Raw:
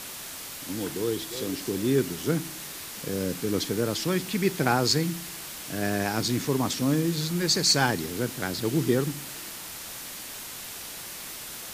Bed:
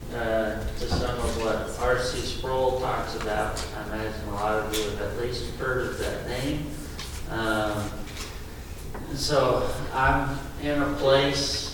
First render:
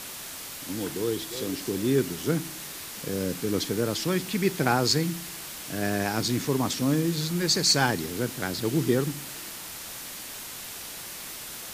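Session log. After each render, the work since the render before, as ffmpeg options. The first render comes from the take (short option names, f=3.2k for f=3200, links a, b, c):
-af anull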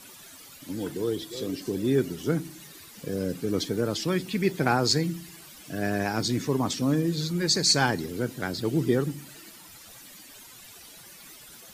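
-af "afftdn=nr=13:nf=-39"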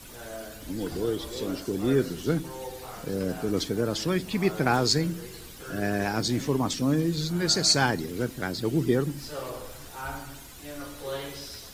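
-filter_complex "[1:a]volume=-14.5dB[a];[0:a][a]amix=inputs=2:normalize=0"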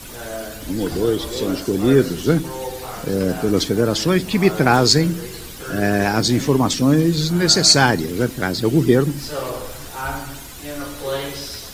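-af "volume=9.5dB,alimiter=limit=-1dB:level=0:latency=1"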